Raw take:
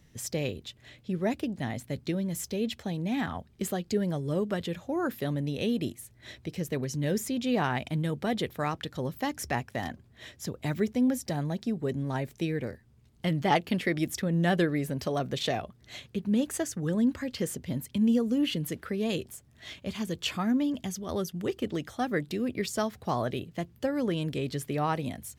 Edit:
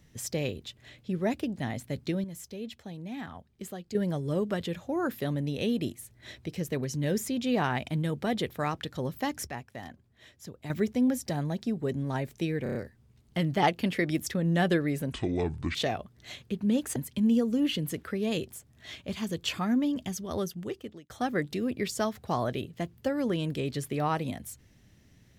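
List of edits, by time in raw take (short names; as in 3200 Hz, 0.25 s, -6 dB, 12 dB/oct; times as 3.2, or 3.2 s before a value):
2.24–3.95 gain -8.5 dB
9.47–10.7 gain -8.5 dB
12.63 stutter 0.03 s, 5 plays
15–15.39 speed 62%
16.6–17.74 cut
21.17–21.88 fade out linear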